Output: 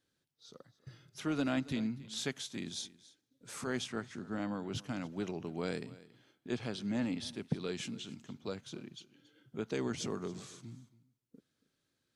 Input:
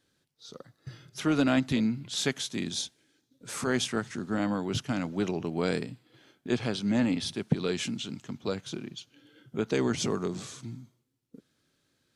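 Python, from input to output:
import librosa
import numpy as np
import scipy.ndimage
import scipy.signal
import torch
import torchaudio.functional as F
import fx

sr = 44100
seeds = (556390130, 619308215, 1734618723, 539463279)

y = fx.high_shelf(x, sr, hz=9800.0, db=-10.0, at=(3.77, 4.76))
y = y + 10.0 ** (-19.5 / 20.0) * np.pad(y, (int(278 * sr / 1000.0), 0))[:len(y)]
y = F.gain(torch.from_numpy(y), -8.5).numpy()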